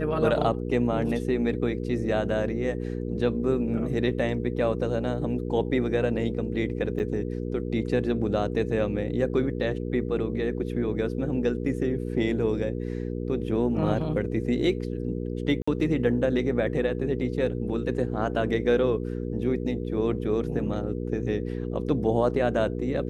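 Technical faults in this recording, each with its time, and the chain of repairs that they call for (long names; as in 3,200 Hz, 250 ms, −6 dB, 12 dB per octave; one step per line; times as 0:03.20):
mains hum 60 Hz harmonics 8 −31 dBFS
0:06.99–0:07.00: drop-out 9 ms
0:15.62–0:15.68: drop-out 55 ms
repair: hum removal 60 Hz, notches 8
repair the gap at 0:06.99, 9 ms
repair the gap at 0:15.62, 55 ms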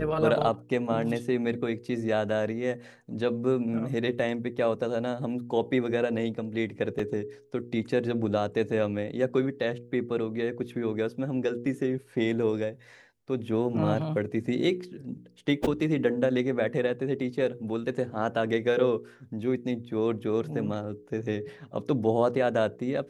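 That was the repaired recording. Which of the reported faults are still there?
none of them is left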